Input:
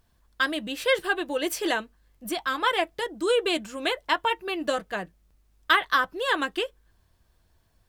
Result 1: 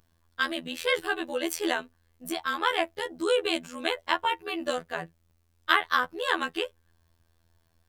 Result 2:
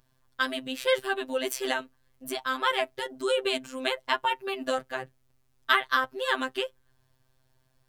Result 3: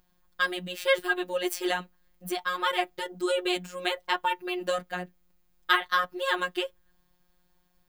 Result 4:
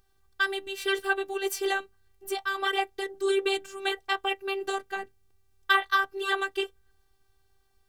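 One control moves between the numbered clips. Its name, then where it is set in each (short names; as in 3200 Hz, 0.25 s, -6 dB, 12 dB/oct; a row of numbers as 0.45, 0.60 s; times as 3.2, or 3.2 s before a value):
robotiser, frequency: 83, 130, 180, 390 Hz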